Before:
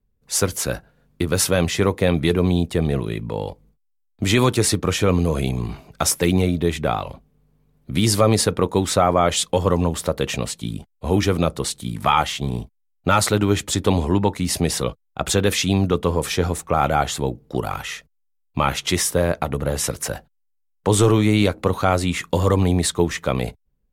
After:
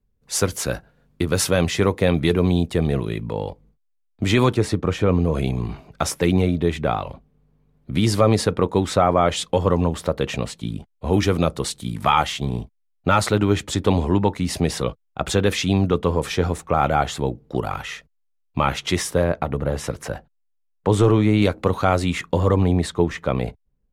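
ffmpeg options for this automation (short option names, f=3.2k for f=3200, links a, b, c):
-af "asetnsamples=n=441:p=0,asendcmd='3.33 lowpass f 3500;4.54 lowpass f 1400;5.34 lowpass f 3200;11.13 lowpass f 7800;12.45 lowpass f 3800;19.24 lowpass f 1900;21.42 lowpass f 5100;22.21 lowpass f 1900',lowpass=f=7.7k:p=1"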